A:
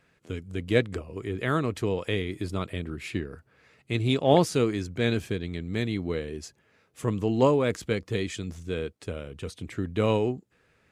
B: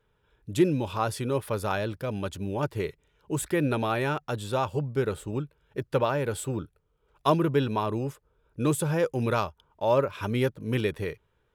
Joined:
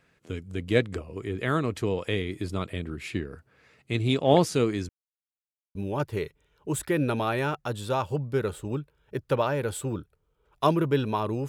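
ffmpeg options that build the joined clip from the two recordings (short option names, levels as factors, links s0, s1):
-filter_complex "[0:a]apad=whole_dur=11.48,atrim=end=11.48,asplit=2[s0][s1];[s0]atrim=end=4.89,asetpts=PTS-STARTPTS,afade=t=out:st=4.886:d=0.004:c=hsin[s2];[s1]atrim=start=4.89:end=5.75,asetpts=PTS-STARTPTS,volume=0[s3];[1:a]atrim=start=2.38:end=8.11,asetpts=PTS-STARTPTS,afade=t=in:d=0.004:c=hsin[s4];[s2][s3][s4]concat=n=3:v=0:a=1"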